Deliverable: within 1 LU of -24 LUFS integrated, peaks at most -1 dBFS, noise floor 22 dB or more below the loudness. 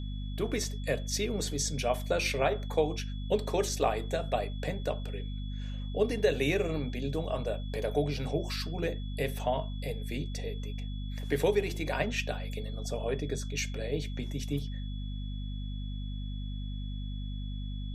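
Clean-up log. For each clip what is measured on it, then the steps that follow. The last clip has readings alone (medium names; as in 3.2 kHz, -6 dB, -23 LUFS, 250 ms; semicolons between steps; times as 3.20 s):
hum 50 Hz; highest harmonic 250 Hz; hum level -34 dBFS; steady tone 3.4 kHz; tone level -51 dBFS; loudness -33.5 LUFS; peak level -14.5 dBFS; loudness target -24.0 LUFS
-> hum notches 50/100/150/200/250 Hz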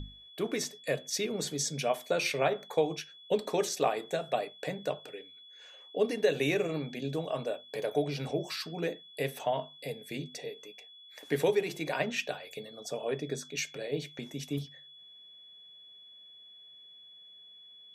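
hum not found; steady tone 3.4 kHz; tone level -51 dBFS
-> band-stop 3.4 kHz, Q 30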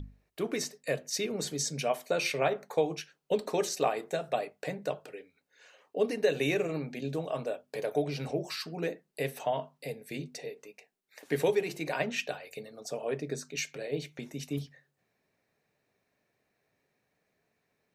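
steady tone not found; loudness -33.5 LUFS; peak level -14.5 dBFS; loudness target -24.0 LUFS
-> trim +9.5 dB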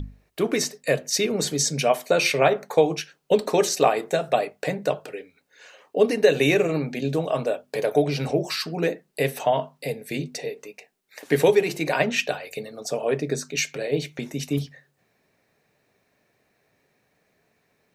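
loudness -24.0 LUFS; peak level -5.0 dBFS; noise floor -69 dBFS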